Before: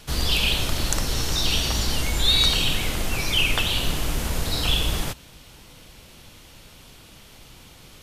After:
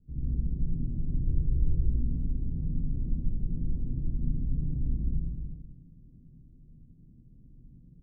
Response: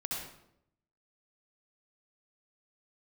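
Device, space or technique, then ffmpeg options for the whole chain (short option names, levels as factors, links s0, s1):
next room: -filter_complex "[0:a]lowpass=f=270:w=0.5412,lowpass=f=270:w=1.3066[s0];[1:a]atrim=start_sample=2205[s1];[s0][s1]afir=irnorm=-1:irlink=0,asettb=1/sr,asplit=3[s2][s3][s4];[s2]atrim=end=1.274[s5];[s3]atrim=start=1.27:end=1.9,asetpts=PTS-STARTPTS,afade=t=in:d=0.004:c=qsin,afade=t=out:st=0.626:d=0.004:c=qsin,aecho=1:1:2.2:0.99,atrim=end_sample=27783[s6];[s4]atrim=start=1.896[s7];[s5][s6]acrossfade=d=0.004:c1=hsin:c2=qsin[s8];[s8][s7]acrossfade=d=0.004:c1=qsin:c2=hsin,aecho=1:1:102|369:0.473|0.422,volume=0.376"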